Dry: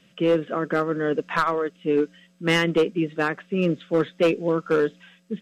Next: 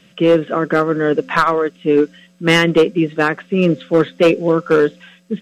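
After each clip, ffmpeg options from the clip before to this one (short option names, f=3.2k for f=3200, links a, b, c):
-af "bandreject=f=259.8:t=h:w=4,bandreject=f=519.6:t=h:w=4,volume=8dB"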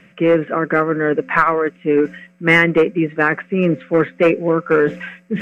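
-af "highshelf=f=2.8k:t=q:w=3:g=-8.5,areverse,acompressor=mode=upward:threshold=-13dB:ratio=2.5,areverse,volume=-2dB"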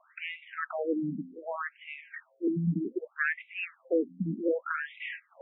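-filter_complex "[0:a]acrossover=split=200|3000[a][b][c];[b]acompressor=threshold=-24dB:ratio=4[d];[a][d][c]amix=inputs=3:normalize=0,afftfilt=real='re*between(b*sr/1024,210*pow(2800/210,0.5+0.5*sin(2*PI*0.65*pts/sr))/1.41,210*pow(2800/210,0.5+0.5*sin(2*PI*0.65*pts/sr))*1.41)':imag='im*between(b*sr/1024,210*pow(2800/210,0.5+0.5*sin(2*PI*0.65*pts/sr))/1.41,210*pow(2800/210,0.5+0.5*sin(2*PI*0.65*pts/sr))*1.41)':win_size=1024:overlap=0.75,volume=-1.5dB"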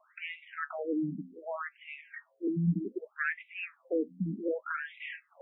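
-af "flanger=delay=4.7:depth=2.3:regen=66:speed=0.66:shape=sinusoidal,volume=1.5dB"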